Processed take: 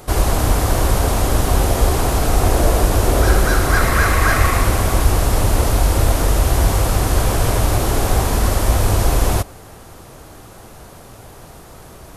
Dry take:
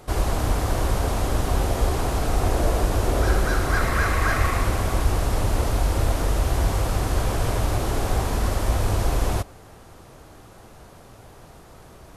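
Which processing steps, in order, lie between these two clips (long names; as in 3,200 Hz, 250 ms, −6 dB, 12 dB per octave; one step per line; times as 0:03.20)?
high-shelf EQ 8,500 Hz +8 dB
level +6.5 dB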